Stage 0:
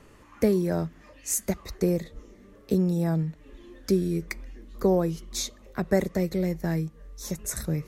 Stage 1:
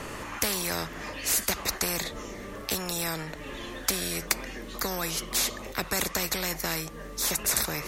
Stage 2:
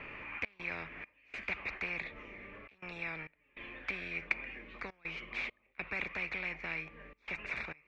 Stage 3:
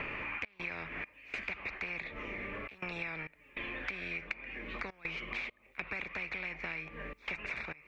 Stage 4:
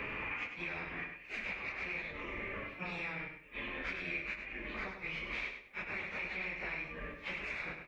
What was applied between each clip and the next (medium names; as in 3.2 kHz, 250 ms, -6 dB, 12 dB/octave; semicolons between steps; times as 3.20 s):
spectrum-flattening compressor 4:1; trim +6 dB
trance gate "xxx.xxx..xxxxxx" 101 bpm -24 dB; four-pole ladder low-pass 2.5 kHz, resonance 80%; trim -1 dB
compression 6:1, threshold -48 dBFS, peak gain reduction 20 dB; trim +11 dB
phase randomisation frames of 100 ms; feedback delay 100 ms, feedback 24%, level -7 dB; trim -1 dB